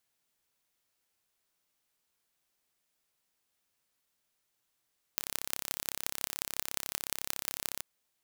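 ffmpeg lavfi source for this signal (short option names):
-f lavfi -i "aevalsrc='0.708*eq(mod(n,1301),0)*(0.5+0.5*eq(mod(n,7806),0))':d=2.63:s=44100"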